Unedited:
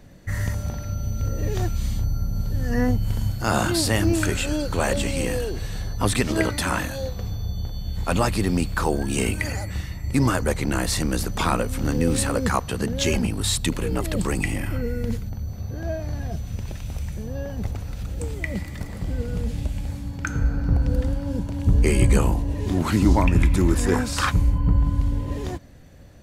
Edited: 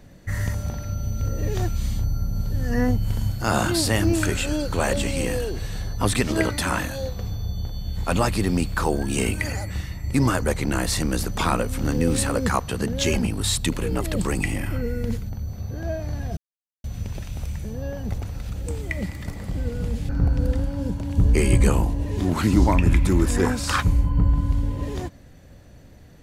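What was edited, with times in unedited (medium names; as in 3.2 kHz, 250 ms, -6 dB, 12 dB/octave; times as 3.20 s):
16.37 s: insert silence 0.47 s
19.62–20.58 s: delete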